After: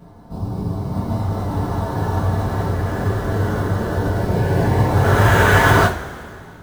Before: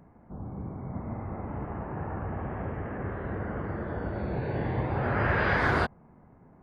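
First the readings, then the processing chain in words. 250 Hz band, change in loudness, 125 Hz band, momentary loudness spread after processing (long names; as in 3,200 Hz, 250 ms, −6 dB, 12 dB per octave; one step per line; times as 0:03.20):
+12.0 dB, +13.0 dB, +15.0 dB, 15 LU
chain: in parallel at −4 dB: sample-rate reduction 4,900 Hz, jitter 20%
on the sum: coupled-rooms reverb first 0.28 s, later 2.4 s, from −21 dB, DRR −8 dB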